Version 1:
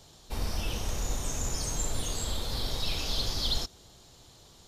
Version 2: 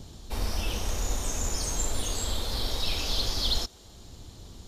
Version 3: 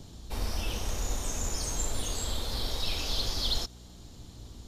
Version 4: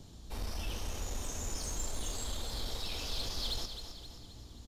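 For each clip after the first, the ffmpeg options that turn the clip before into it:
ffmpeg -i in.wav -filter_complex "[0:a]equalizer=frequency=140:width=4.6:gain=-13.5,acrossover=split=280|940[link_01][link_02][link_03];[link_01]acompressor=mode=upward:threshold=-35dB:ratio=2.5[link_04];[link_04][link_02][link_03]amix=inputs=3:normalize=0,volume=2.5dB" out.wav
ffmpeg -i in.wav -af "aeval=exprs='val(0)+0.00447*(sin(2*PI*60*n/s)+sin(2*PI*2*60*n/s)/2+sin(2*PI*3*60*n/s)/3+sin(2*PI*4*60*n/s)/4+sin(2*PI*5*60*n/s)/5)':channel_layout=same,volume=-2.5dB" out.wav
ffmpeg -i in.wav -filter_complex "[0:a]asoftclip=type=tanh:threshold=-24dB,asplit=2[link_01][link_02];[link_02]aecho=0:1:263|526|789|1052|1315|1578:0.355|0.177|0.0887|0.0444|0.0222|0.0111[link_03];[link_01][link_03]amix=inputs=2:normalize=0,volume=-5dB" out.wav

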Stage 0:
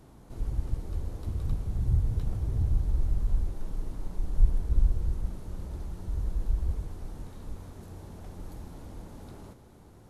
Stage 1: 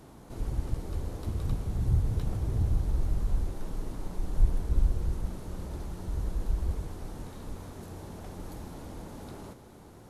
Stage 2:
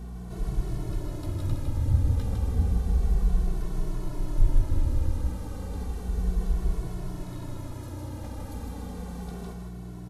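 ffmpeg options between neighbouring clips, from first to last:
ffmpeg -i in.wav -af "lowshelf=frequency=120:gain=-7.5,volume=5dB" out.wav
ffmpeg -i in.wav -filter_complex "[0:a]aeval=exprs='val(0)+0.0112*(sin(2*PI*60*n/s)+sin(2*PI*2*60*n/s)/2+sin(2*PI*3*60*n/s)/3+sin(2*PI*4*60*n/s)/4+sin(2*PI*5*60*n/s)/5)':channel_layout=same,aecho=1:1:156:0.596,asplit=2[link_01][link_02];[link_02]adelay=2.2,afreqshift=-0.32[link_03];[link_01][link_03]amix=inputs=2:normalize=1,volume=4.5dB" out.wav

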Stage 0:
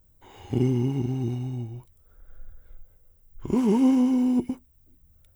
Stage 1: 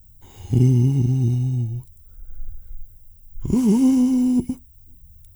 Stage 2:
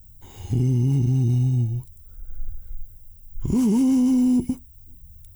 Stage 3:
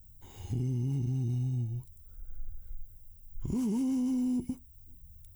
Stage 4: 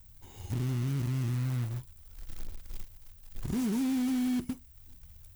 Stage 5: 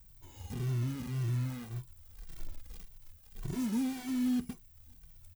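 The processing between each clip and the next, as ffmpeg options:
ffmpeg -i in.wav -af "bass=frequency=250:gain=15,treble=frequency=4000:gain=15,volume=-3.5dB" out.wav
ffmpeg -i in.wav -af "alimiter=limit=-15dB:level=0:latency=1:release=25,volume=1.5dB" out.wav
ffmpeg -i in.wav -af "acompressor=threshold=-29dB:ratio=1.5,volume=-7dB" out.wav
ffmpeg -i in.wav -af "acrusher=bits=3:mode=log:mix=0:aa=0.000001" out.wav
ffmpeg -i in.wav -filter_complex "[0:a]asplit=2[link_01][link_02];[link_02]adelay=2.1,afreqshift=-1.8[link_03];[link_01][link_03]amix=inputs=2:normalize=1" out.wav

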